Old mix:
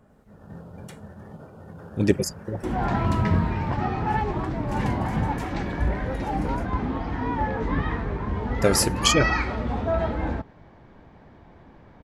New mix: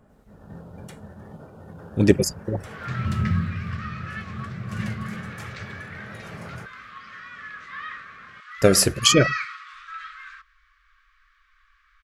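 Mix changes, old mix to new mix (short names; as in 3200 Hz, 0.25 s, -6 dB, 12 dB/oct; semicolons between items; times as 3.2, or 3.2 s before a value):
speech +4.0 dB; second sound: add Chebyshev high-pass 1100 Hz, order 10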